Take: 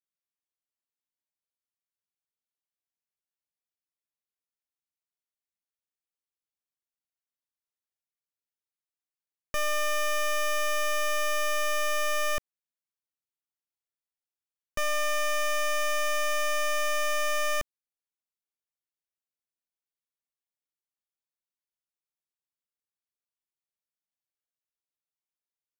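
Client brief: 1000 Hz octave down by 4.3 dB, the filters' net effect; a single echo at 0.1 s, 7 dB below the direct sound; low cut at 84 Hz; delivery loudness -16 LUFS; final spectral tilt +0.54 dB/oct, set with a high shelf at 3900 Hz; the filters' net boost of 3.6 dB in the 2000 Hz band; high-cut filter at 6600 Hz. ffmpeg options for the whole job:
-af "highpass=84,lowpass=6.6k,equalizer=f=1k:t=o:g=-8,equalizer=f=2k:t=o:g=8,highshelf=f=3.9k:g=-8,aecho=1:1:100:0.447,volume=9dB"

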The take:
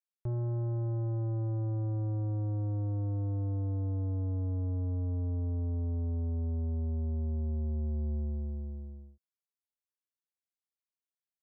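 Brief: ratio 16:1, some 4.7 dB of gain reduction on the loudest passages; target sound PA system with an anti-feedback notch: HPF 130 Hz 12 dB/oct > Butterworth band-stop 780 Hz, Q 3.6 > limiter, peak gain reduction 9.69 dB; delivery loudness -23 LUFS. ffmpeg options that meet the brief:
-af "acompressor=threshold=-36dB:ratio=16,highpass=130,asuperstop=centerf=780:order=8:qfactor=3.6,volume=27dB,alimiter=limit=-15.5dB:level=0:latency=1"

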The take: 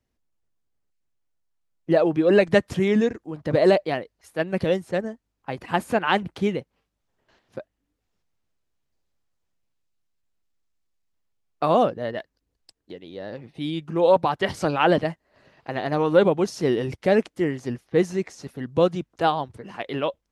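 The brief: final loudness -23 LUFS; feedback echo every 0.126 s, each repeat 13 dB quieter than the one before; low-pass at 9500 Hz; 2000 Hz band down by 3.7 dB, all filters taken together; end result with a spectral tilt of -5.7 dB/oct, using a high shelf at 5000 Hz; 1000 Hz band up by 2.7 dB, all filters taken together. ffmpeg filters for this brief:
-af "lowpass=9.5k,equalizer=f=1k:t=o:g=5,equalizer=f=2k:t=o:g=-6,highshelf=f=5k:g=-5,aecho=1:1:126|252|378:0.224|0.0493|0.0108,volume=-1dB"

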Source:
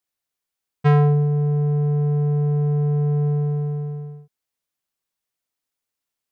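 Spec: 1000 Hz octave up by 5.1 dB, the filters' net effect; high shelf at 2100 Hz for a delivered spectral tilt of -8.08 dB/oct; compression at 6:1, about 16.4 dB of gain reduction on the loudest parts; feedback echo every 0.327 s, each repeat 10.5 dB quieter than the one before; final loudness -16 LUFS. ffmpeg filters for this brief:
-af "equalizer=f=1k:t=o:g=8.5,highshelf=f=2.1k:g=-5.5,acompressor=threshold=-30dB:ratio=6,aecho=1:1:327|654|981:0.299|0.0896|0.0269,volume=12.5dB"

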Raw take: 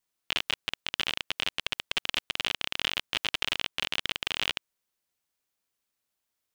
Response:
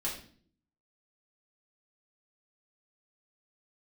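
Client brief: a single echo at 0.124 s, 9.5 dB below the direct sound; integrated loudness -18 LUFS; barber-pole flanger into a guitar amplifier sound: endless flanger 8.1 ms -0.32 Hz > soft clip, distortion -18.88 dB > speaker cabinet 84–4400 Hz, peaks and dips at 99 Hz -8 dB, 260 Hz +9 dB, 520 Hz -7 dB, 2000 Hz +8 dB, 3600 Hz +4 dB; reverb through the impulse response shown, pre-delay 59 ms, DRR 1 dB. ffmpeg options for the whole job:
-filter_complex "[0:a]aecho=1:1:124:0.335,asplit=2[a][b];[1:a]atrim=start_sample=2205,adelay=59[c];[b][c]afir=irnorm=-1:irlink=0,volume=-4.5dB[d];[a][d]amix=inputs=2:normalize=0,asplit=2[e][f];[f]adelay=8.1,afreqshift=-0.32[g];[e][g]amix=inputs=2:normalize=1,asoftclip=threshold=-18dB,highpass=84,equalizer=f=99:t=q:w=4:g=-8,equalizer=f=260:t=q:w=4:g=9,equalizer=f=520:t=q:w=4:g=-7,equalizer=f=2k:t=q:w=4:g=8,equalizer=f=3.6k:t=q:w=4:g=4,lowpass=f=4.4k:w=0.5412,lowpass=f=4.4k:w=1.3066,volume=11dB"

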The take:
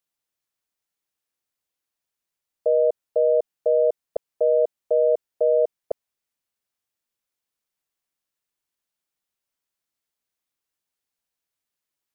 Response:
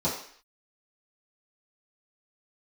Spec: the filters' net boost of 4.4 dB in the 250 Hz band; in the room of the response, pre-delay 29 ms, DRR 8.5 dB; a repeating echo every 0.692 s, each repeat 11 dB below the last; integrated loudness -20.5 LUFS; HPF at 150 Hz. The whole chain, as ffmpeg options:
-filter_complex "[0:a]highpass=150,equalizer=f=250:t=o:g=8,aecho=1:1:692|1384|2076:0.282|0.0789|0.0221,asplit=2[a][b];[1:a]atrim=start_sample=2205,adelay=29[c];[b][c]afir=irnorm=-1:irlink=0,volume=-19dB[d];[a][d]amix=inputs=2:normalize=0,volume=-1dB"

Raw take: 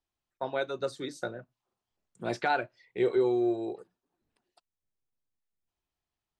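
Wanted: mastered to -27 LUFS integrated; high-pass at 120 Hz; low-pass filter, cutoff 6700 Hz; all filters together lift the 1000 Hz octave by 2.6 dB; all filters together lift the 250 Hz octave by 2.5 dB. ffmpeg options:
-af "highpass=120,lowpass=6.7k,equalizer=f=250:t=o:g=4.5,equalizer=f=1k:t=o:g=3.5,volume=2.5dB"

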